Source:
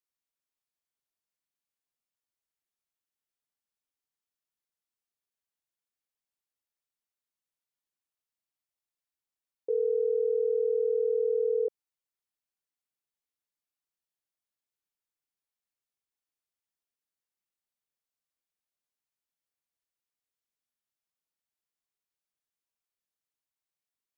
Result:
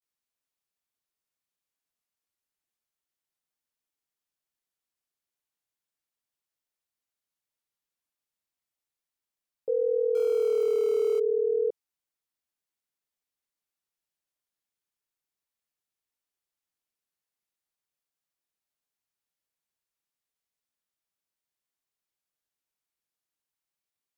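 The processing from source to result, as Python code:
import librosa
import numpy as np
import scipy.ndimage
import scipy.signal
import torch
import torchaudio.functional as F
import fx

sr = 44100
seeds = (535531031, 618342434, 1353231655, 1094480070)

y = fx.zero_step(x, sr, step_db=-39.5, at=(10.17, 11.19))
y = fx.vibrato(y, sr, rate_hz=0.34, depth_cents=78.0)
y = F.gain(torch.from_numpy(y), 1.5).numpy()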